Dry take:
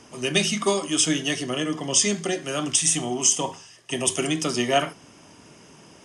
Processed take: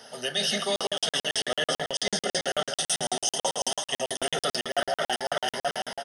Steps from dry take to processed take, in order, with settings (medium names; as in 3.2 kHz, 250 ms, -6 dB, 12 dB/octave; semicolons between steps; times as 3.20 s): high-pass 290 Hz 12 dB/octave; treble shelf 7.1 kHz +7 dB; static phaser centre 1.6 kHz, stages 8; in parallel at +1 dB: peak limiter -20.5 dBFS, peak gain reduction 11 dB; on the sum: echo whose repeats swap between lows and highs 177 ms, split 1.8 kHz, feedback 70%, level -5 dB; level rider gain up to 13 dB; frequency-shifting echo 159 ms, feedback 51%, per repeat +62 Hz, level -11 dB; reverse; compression 10:1, threshold -23 dBFS, peak gain reduction 16 dB; reverse; crackling interface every 0.11 s, samples 2048, zero, from 0.76 s